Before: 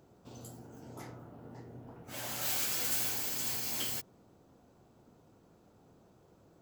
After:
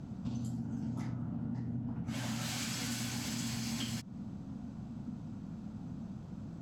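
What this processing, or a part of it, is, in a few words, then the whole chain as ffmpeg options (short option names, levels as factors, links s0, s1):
jukebox: -af "lowpass=7000,lowshelf=f=300:t=q:w=3:g=9.5,acompressor=threshold=0.00631:ratio=5,volume=2.66"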